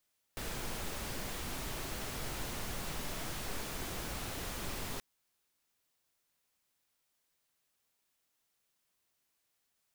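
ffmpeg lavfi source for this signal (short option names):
-f lavfi -i "anoisesrc=c=pink:a=0.0543:d=4.63:r=44100:seed=1"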